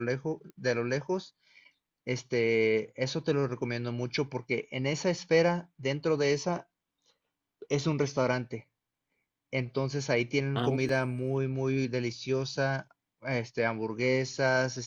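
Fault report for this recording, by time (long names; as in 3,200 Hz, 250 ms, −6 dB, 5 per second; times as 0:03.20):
0:00.50: click −35 dBFS
0:10.89: drop-out 2.5 ms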